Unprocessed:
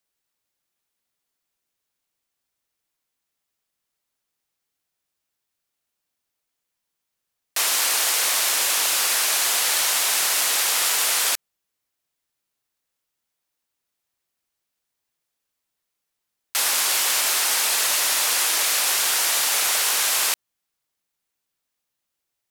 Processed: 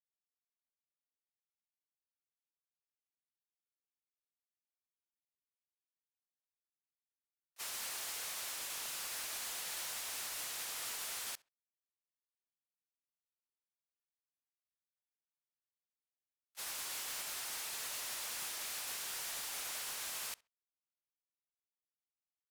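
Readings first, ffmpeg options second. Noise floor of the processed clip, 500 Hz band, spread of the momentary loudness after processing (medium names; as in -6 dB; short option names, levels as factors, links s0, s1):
under -85 dBFS, -21.0 dB, 3 LU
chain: -filter_complex "[0:a]agate=range=0.00447:threshold=0.126:ratio=16:detection=peak,asoftclip=type=tanh:threshold=0.0106,asplit=2[s0][s1];[s1]adelay=67,lowpass=f=3900:p=1,volume=0.0708,asplit=2[s2][s3];[s3]adelay=67,lowpass=f=3900:p=1,volume=0.2[s4];[s0][s2][s4]amix=inputs=3:normalize=0"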